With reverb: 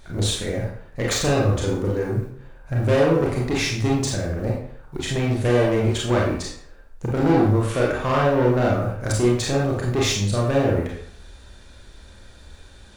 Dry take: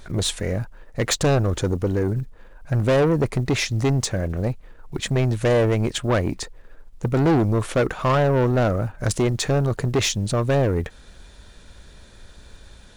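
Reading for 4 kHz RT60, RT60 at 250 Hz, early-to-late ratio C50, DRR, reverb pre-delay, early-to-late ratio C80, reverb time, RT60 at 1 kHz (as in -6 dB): 0.50 s, 0.55 s, 2.5 dB, -3.5 dB, 27 ms, 6.5 dB, 0.60 s, 0.60 s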